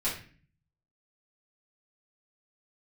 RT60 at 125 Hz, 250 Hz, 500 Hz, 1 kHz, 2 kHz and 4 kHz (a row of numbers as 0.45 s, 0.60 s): 0.90 s, 0.75 s, 0.45 s, 0.40 s, 0.50 s, 0.35 s